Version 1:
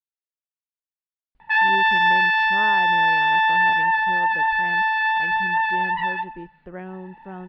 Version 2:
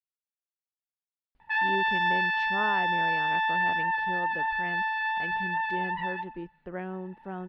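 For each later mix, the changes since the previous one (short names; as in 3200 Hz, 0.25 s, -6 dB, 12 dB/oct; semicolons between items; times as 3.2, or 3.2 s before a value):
speech: add low shelf 120 Hz -5.5 dB; background -8.5 dB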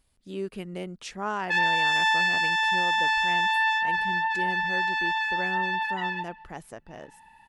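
speech: entry -1.35 s; master: remove air absorption 350 m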